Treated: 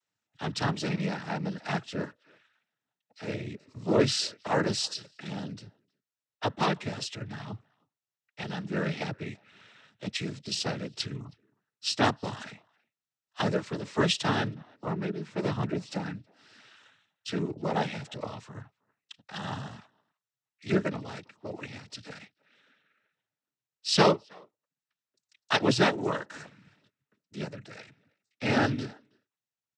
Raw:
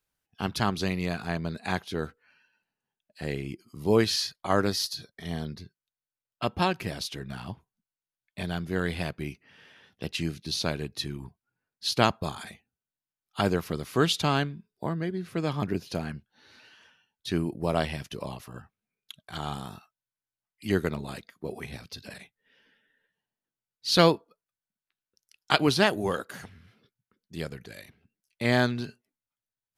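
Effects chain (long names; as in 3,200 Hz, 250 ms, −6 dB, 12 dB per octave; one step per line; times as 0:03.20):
far-end echo of a speakerphone 320 ms, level −27 dB
cochlear-implant simulation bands 12
level −1 dB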